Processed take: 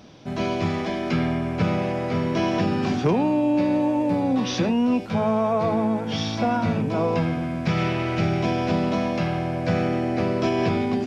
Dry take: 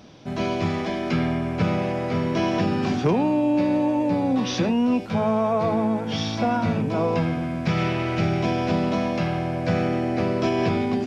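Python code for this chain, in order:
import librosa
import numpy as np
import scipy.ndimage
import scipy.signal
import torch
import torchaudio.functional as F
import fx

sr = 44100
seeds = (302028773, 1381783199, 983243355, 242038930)

y = fx.median_filter(x, sr, points=9, at=(3.81, 4.21))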